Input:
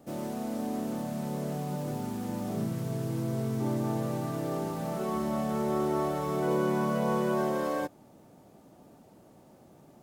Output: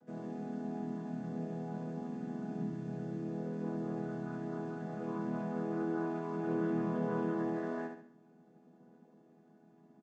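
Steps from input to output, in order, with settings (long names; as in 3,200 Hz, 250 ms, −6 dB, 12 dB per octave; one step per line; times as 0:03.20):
channel vocoder with a chord as carrier major triad, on E3
parametric band 1,600 Hz +10 dB 0.3 octaves
repeating echo 70 ms, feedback 41%, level −5.5 dB
level −5.5 dB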